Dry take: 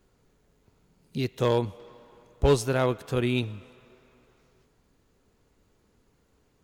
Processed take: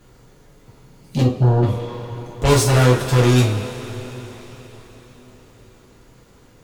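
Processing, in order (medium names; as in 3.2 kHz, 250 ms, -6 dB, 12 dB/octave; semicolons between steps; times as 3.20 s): 1.21–1.63 s: inverse Chebyshev low-pass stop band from 720 Hz, stop band 40 dB; in parallel at -10 dB: sine folder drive 15 dB, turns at -13 dBFS; on the sum: two-slope reverb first 0.32 s, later 5 s, from -20 dB, DRR -3.5 dB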